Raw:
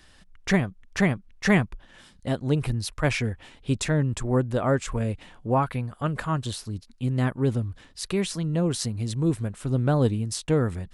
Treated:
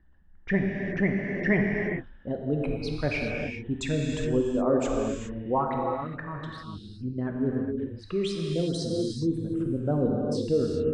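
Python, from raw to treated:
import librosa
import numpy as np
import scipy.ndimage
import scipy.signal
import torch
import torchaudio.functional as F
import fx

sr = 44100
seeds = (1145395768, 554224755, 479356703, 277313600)

y = fx.envelope_sharpen(x, sr, power=2.0)
y = fx.env_lowpass(y, sr, base_hz=1100.0, full_db=-18.5)
y = fx.peak_eq(y, sr, hz=120.0, db=-11.5, octaves=0.5)
y = fx.level_steps(y, sr, step_db=11, at=(5.78, 6.58))
y = fx.rev_gated(y, sr, seeds[0], gate_ms=440, shape='flat', drr_db=-0.5)
y = y * 10.0 ** (-3.5 / 20.0)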